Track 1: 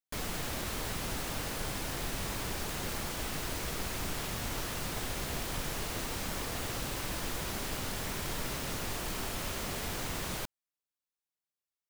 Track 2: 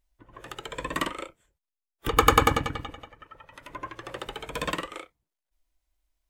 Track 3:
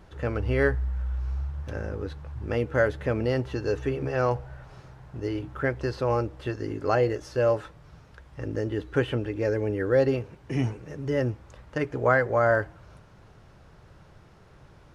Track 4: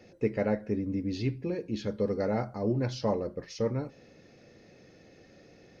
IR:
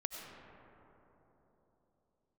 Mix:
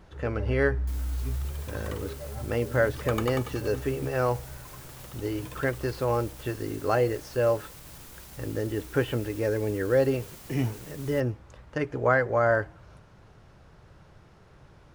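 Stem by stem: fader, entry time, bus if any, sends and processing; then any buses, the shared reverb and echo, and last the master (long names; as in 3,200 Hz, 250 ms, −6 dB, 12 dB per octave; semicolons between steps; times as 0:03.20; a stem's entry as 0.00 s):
−15.0 dB, 0.75 s, send −9.5 dB, high-shelf EQ 6,300 Hz +10.5 dB; brickwall limiter −24.5 dBFS, peak gain reduction 4.5 dB
−15.5 dB, 0.90 s, no send, no processing
−1.0 dB, 0.00 s, no send, no processing
−3.0 dB, 0.00 s, no send, stiff-string resonator 120 Hz, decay 0.28 s, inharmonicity 0.03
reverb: on, RT60 3.8 s, pre-delay 55 ms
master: no processing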